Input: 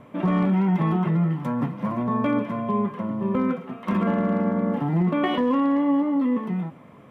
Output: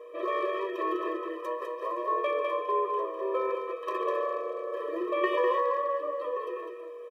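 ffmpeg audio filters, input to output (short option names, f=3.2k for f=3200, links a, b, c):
-filter_complex "[0:a]aeval=exprs='val(0)+0.00708*sin(2*PI*480*n/s)':c=same,highpass=270,asplit=2[a][b];[b]aecho=0:1:202:0.562[c];[a][c]amix=inputs=2:normalize=0,afftfilt=real='re*eq(mod(floor(b*sr/1024/330),2),1)':imag='im*eq(mod(floor(b*sr/1024/330),2),1)':win_size=1024:overlap=0.75"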